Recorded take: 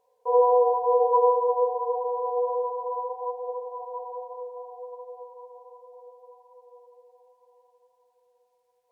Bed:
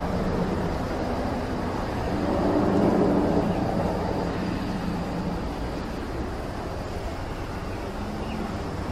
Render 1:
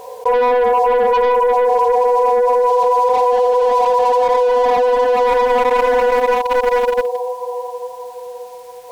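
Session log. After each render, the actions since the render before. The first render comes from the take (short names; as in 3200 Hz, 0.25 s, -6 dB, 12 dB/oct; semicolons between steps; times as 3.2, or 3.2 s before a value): sample leveller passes 2; fast leveller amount 100%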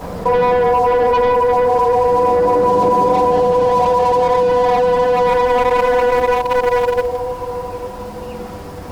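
add bed -1.5 dB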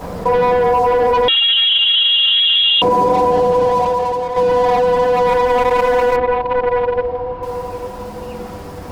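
1.28–2.82 inverted band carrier 3800 Hz; 3.63–4.36 fade out, to -9 dB; 6.16–7.43 air absorption 360 m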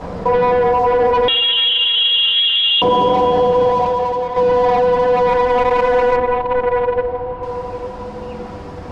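air absorption 100 m; Schroeder reverb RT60 3.1 s, combs from 26 ms, DRR 16.5 dB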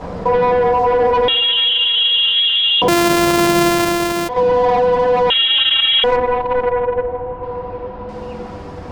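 2.88–4.29 sample sorter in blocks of 128 samples; 5.3–6.04 inverted band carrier 3800 Hz; 6.7–8.09 air absorption 300 m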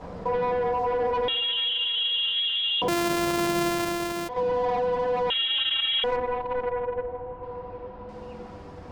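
gain -11.5 dB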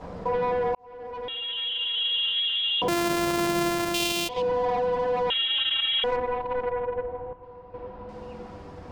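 0.75–2.11 fade in; 3.94–4.42 resonant high shelf 2200 Hz +8.5 dB, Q 3; 7.33–7.74 gain -8.5 dB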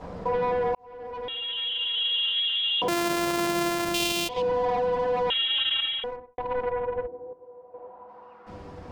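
2.13–3.85 low shelf 180 Hz -7 dB; 5.75–6.38 studio fade out; 7.06–8.46 band-pass 320 Hz -> 1300 Hz, Q 1.9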